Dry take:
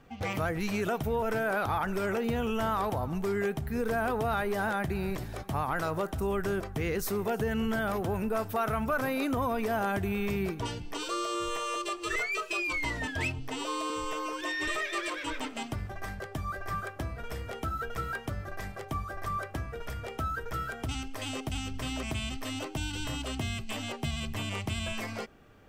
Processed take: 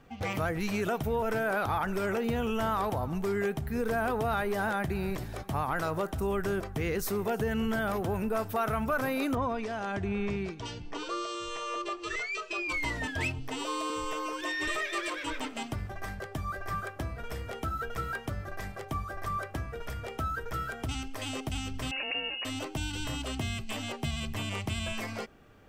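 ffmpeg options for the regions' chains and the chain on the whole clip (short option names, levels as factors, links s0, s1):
-filter_complex "[0:a]asettb=1/sr,asplit=3[s0][s1][s2];[s0]atrim=end=9.354[s3];[s1]atrim=start=9.35:end=12.69,asetpts=PTS-STARTPTS,afade=t=in:d=0.004:c=qsin,afade=t=out:st=3.336:d=0.004:c=qsin,lowpass=f=7000:w=0.5412,lowpass=f=7000:w=1.3066,acrossover=split=2300[s4][s5];[s4]aeval=exprs='val(0)*(1-0.5/2+0.5/2*cos(2*PI*1.2*n/s))':c=same[s6];[s5]aeval=exprs='val(0)*(1-0.5/2-0.5/2*cos(2*PI*1.2*n/s))':c=same[s7];[s6][s7]amix=inputs=2:normalize=0[s8];[s2]atrim=start=12.686[s9];[s3][s8]acrossfade=d=0.004:c1=hsin:c2=qsin[s10];[s10][s9]acrossfade=d=0.004:c1=qsin:c2=hsin,asettb=1/sr,asplit=3[s11][s12][s13];[s11]atrim=end=21.914[s14];[s12]atrim=start=21.91:end=22.45,asetpts=PTS-STARTPTS,afade=t=in:d=0.004:c=qsin,afade=t=out:st=0.536:d=0.004:c=qsin,lowpass=f=2500:t=q:w=0.5098,lowpass=f=2500:t=q:w=0.6013,lowpass=f=2500:t=q:w=0.9,lowpass=f=2500:t=q:w=2.563,afreqshift=-2900,equalizer=f=570:t=o:w=0.64:g=9.5[s15];[s13]atrim=start=22.446[s16];[s14][s15]acrossfade=d=0.004:c1=hsin:c2=qsin[s17];[s17][s16]acrossfade=d=0.004:c1=qsin:c2=hsin"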